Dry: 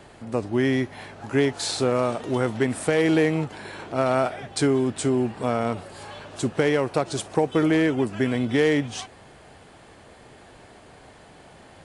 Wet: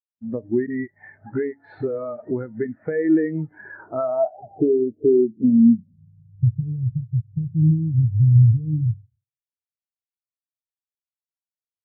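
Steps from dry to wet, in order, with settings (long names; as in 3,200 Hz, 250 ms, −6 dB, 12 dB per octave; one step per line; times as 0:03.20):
noise gate with hold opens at −35 dBFS
low-pass filter sweep 1,900 Hz → 110 Hz, 0:03.55–0:06.48
downward compressor 8 to 1, threshold −27 dBFS, peak gain reduction 13.5 dB
0:00.66–0:02.31: all-pass dispersion highs, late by 42 ms, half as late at 300 Hz
convolution reverb RT60 0.70 s, pre-delay 3 ms, DRR 12.5 dB
every bin expanded away from the loudest bin 2.5 to 1
level +5.5 dB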